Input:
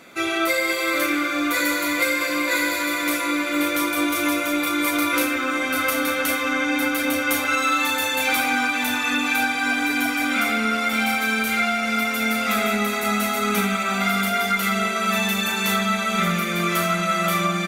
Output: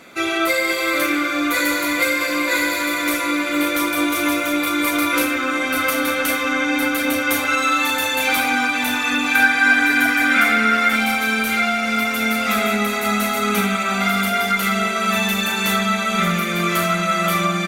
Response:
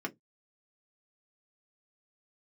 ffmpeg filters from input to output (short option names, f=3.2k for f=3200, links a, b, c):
-filter_complex "[0:a]asettb=1/sr,asplit=3[a][b][c];[a]atrim=end=9.354[d];[b]atrim=start=9.35:end=10.96,asetpts=PTS-STARTPTS,afade=t=in:d=0.004:c=qsin,afade=t=out:st=1.606:d=0.004:c=qsin,equalizer=f=1.7k:t=o:w=0.51:g=10.5[e];[c]atrim=start=10.956[f];[d][e]acrossfade=d=0.004:c1=hsin:c2=qsin[g];[g][f]acrossfade=d=0.004:c1=qsin:c2=hsin,volume=2.5dB" -ar 44100 -c:a nellymoser